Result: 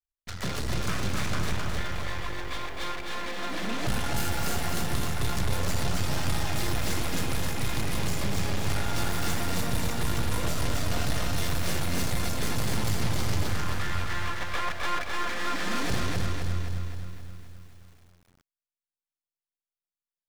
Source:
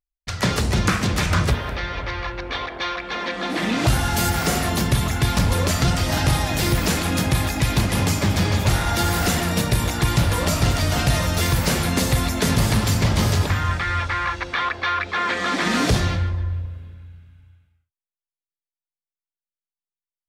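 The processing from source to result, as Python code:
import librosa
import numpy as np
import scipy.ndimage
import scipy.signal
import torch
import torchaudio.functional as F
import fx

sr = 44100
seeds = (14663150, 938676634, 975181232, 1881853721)

y = fx.diode_clip(x, sr, knee_db=-20.0)
y = fx.low_shelf_res(y, sr, hz=490.0, db=-7.5, q=3.0, at=(14.34, 15.08))
y = np.maximum(y, 0.0)
y = fx.echo_crushed(y, sr, ms=262, feedback_pct=55, bits=9, wet_db=-3.5)
y = y * 10.0 ** (-3.0 / 20.0)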